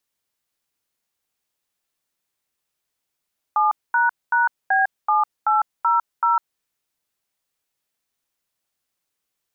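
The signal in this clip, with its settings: DTMF "7##B7800", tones 153 ms, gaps 228 ms, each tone -17.5 dBFS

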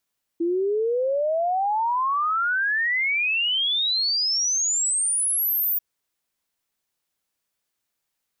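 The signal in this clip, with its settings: log sweep 330 Hz -> 15 kHz 5.39 s -20 dBFS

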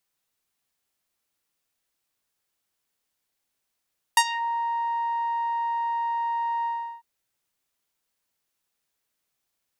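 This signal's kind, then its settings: synth note saw A#5 12 dB/octave, low-pass 1.1 kHz, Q 1.9, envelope 3.5 oct, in 0.25 s, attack 3.1 ms, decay 0.06 s, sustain -16.5 dB, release 0.37 s, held 2.48 s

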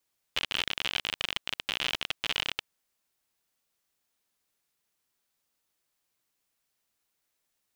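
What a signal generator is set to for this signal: random clicks 53 per s -13 dBFS 2.27 s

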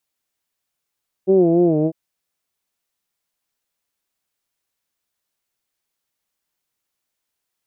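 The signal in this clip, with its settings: formant vowel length 0.65 s, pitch 187 Hz, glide -3.5 st, vibrato 3.5 Hz, F1 370 Hz, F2 660 Hz, F3 2.5 kHz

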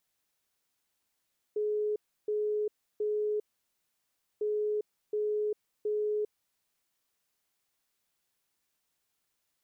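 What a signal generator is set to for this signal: beep pattern sine 422 Hz, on 0.40 s, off 0.32 s, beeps 3, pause 1.01 s, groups 2, -27.5 dBFS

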